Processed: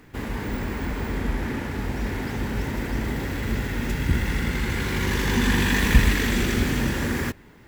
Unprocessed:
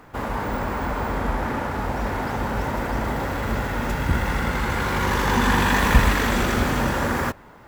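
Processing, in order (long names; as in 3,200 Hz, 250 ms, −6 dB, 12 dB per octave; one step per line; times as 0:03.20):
flat-topped bell 860 Hz −10.5 dB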